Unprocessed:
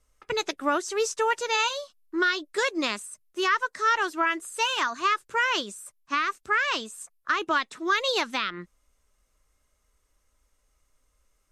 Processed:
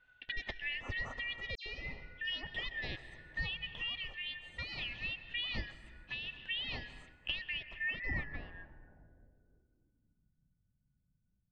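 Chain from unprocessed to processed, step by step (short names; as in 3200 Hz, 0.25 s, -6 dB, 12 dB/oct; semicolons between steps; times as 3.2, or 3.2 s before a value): four-band scrambler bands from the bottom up 4123; compressor 4:1, threshold -40 dBFS, peak gain reduction 17.5 dB; reverb RT60 3.1 s, pre-delay 0.113 s, DRR 9.5 dB; dynamic EQ 650 Hz, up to +4 dB, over -57 dBFS, Q 0.96; low-pass sweep 3400 Hz -> 180 Hz, 7.46–10.44; tilt -4.5 dB/oct; 1.55–2.47 dispersion lows, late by 0.109 s, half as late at 2900 Hz; noise-modulated level, depth 55%; gain +2.5 dB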